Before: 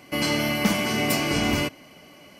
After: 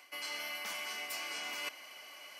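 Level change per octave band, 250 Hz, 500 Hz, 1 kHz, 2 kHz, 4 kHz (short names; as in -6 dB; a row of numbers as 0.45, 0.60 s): -35.0, -22.5, -16.0, -12.5, -12.5 dB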